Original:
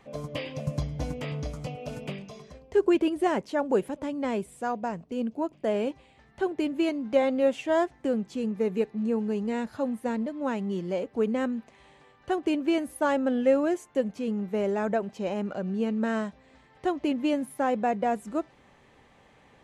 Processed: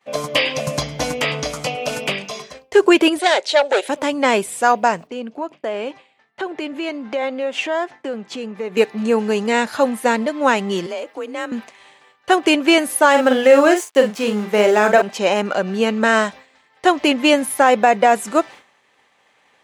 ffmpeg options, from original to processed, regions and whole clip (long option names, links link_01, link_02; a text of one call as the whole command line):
ffmpeg -i in.wav -filter_complex "[0:a]asettb=1/sr,asplit=3[link_01][link_02][link_03];[link_01]atrim=end=3.194[link_04];[link_02]atrim=start=3.19:end=3.89,asetpts=PTS-STARTPTS,afade=type=in:duration=0.004:curve=qsin,afade=type=out:start_time=0.696:duration=0.004:curve=qsin,aeval=exprs='(tanh(15.8*val(0)+0.4)-tanh(0.4))/15.8':channel_layout=same,highpass=frequency=420:width=0.5412,highpass=frequency=420:width=1.3066,equalizer=frequency=600:width_type=q:width=4:gain=4,equalizer=frequency=1100:width_type=q:width=4:gain=-10,equalizer=frequency=3900:width_type=q:width=4:gain=9,lowpass=frequency=9400:width=0.5412,lowpass=frequency=9400:width=1.3066[link_05];[link_03]atrim=start=3.886[link_06];[link_04][link_05]acrossfade=duration=0.004:curve1=hsin:curve2=qsin[link_07];[link_07][link_06]acrossfade=duration=0.004:curve1=qsin:curve2=hsin,asettb=1/sr,asplit=3[link_08][link_09][link_10];[link_08]atrim=end=5.074[link_11];[link_09]atrim=start=5.07:end=8.77,asetpts=PTS-STARTPTS,afade=type=in:duration=0.004:curve=qsin,afade=type=out:start_time=3.696:duration=0.004:curve=qsin,highpass=110,aemphasis=mode=reproduction:type=50fm,acompressor=threshold=-37dB:ratio=3:attack=3.2:release=140:knee=1:detection=peak[link_12];[link_10]atrim=start=8.766[link_13];[link_11][link_12]acrossfade=duration=0.004:curve1=hsin:curve2=qsin[link_14];[link_14][link_13]acrossfade=duration=0.004:curve1=qsin:curve2=hsin,asettb=1/sr,asplit=3[link_15][link_16][link_17];[link_15]atrim=end=10.864[link_18];[link_16]atrim=start=10.86:end=11.52,asetpts=PTS-STARTPTS,afade=type=in:duration=0.004:curve=qsin,afade=type=out:start_time=0.656:duration=0.004:curve=qsin,lowshelf=frequency=180:gain=-9,acompressor=threshold=-39dB:ratio=4:attack=3.2:release=140:knee=1:detection=peak,afreqshift=37[link_19];[link_17]atrim=start=11.516[link_20];[link_18][link_19]acrossfade=duration=0.004:curve1=hsin:curve2=qsin[link_21];[link_21][link_20]acrossfade=duration=0.004:curve1=qsin:curve2=hsin,asettb=1/sr,asplit=3[link_22][link_23][link_24];[link_22]atrim=end=13.104[link_25];[link_23]atrim=start=13.1:end=15.02,asetpts=PTS-STARTPTS,afade=type=in:duration=0.004:curve=qsin,afade=type=out:start_time=1.916:duration=0.004:curve=qsin,aeval=exprs='sgn(val(0))*max(abs(val(0))-0.00188,0)':channel_layout=same,asplit=2[link_26][link_27];[link_27]adelay=43,volume=-7dB[link_28];[link_26][link_28]amix=inputs=2:normalize=0,atrim=end_sample=84672[link_29];[link_24]atrim=start=15.016[link_30];[link_25][link_29]acrossfade=duration=0.004:curve1=hsin:curve2=qsin[link_31];[link_31][link_30]acrossfade=duration=0.004:curve1=qsin:curve2=hsin,highpass=frequency=1300:poles=1,agate=range=-33dB:threshold=-52dB:ratio=3:detection=peak,alimiter=level_in=23dB:limit=-1dB:release=50:level=0:latency=1,volume=-1dB" out.wav